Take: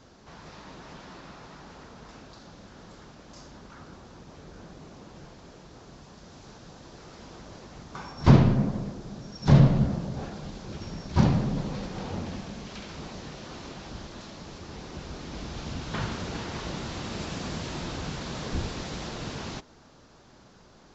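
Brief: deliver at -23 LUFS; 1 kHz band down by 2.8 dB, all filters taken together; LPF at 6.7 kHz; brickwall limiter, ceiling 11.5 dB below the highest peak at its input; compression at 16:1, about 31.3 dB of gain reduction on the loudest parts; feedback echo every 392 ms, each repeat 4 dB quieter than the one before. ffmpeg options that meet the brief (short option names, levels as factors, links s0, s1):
-af "lowpass=6700,equalizer=f=1000:t=o:g=-3.5,acompressor=threshold=0.00708:ratio=16,alimiter=level_in=8.41:limit=0.0631:level=0:latency=1,volume=0.119,aecho=1:1:392|784|1176|1568|1960|2352|2744|3136|3528:0.631|0.398|0.25|0.158|0.0994|0.0626|0.0394|0.0249|0.0157,volume=21.1"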